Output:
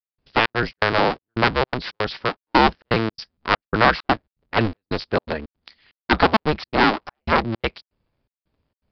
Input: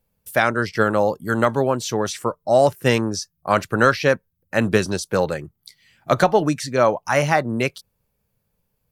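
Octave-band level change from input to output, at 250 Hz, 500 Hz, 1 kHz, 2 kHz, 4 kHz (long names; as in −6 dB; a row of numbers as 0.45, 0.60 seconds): −1.0, −5.0, +1.5, +1.0, +4.5 decibels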